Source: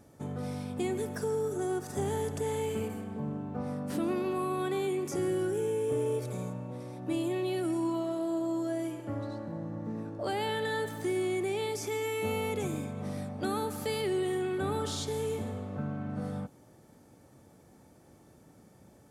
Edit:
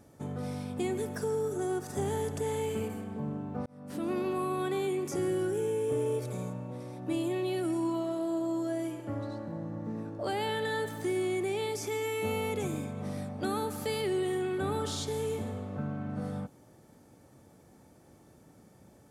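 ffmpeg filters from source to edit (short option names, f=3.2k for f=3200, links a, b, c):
-filter_complex "[0:a]asplit=2[a][b];[a]atrim=end=3.66,asetpts=PTS-STARTPTS,afade=t=out:st=3.656:d=0.004:c=hsin[c];[b]atrim=start=3.66,asetpts=PTS-STARTPTS,afade=t=in:d=0.52[d];[c][d]concat=n=2:v=0:a=1"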